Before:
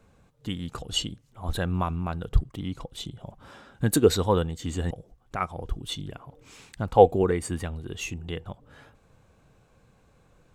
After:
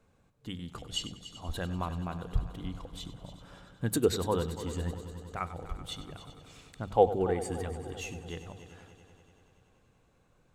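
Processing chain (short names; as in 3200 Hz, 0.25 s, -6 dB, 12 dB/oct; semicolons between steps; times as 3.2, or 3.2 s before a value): notches 50/100/150/200 Hz; on a send: multi-head echo 96 ms, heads first and third, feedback 67%, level -14.5 dB; on the sum: gain -7 dB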